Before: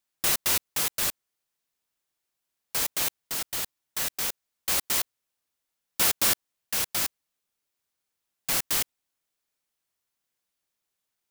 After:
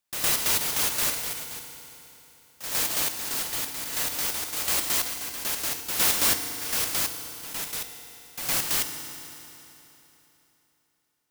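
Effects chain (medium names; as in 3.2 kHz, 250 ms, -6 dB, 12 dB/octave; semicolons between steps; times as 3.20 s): ever faster or slower copies 407 ms, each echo +3 st, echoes 2, each echo -6 dB; reverse echo 111 ms -8.5 dB; FDN reverb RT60 3.4 s, high-frequency decay 0.9×, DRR 6.5 dB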